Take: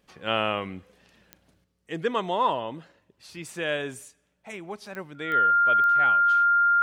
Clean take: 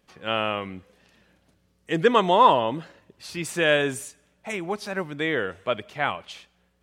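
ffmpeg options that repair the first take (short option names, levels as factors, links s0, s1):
-af "adeclick=t=4,bandreject=f=1400:w=30,asetnsamples=n=441:p=0,asendcmd='1.64 volume volume 8dB',volume=1"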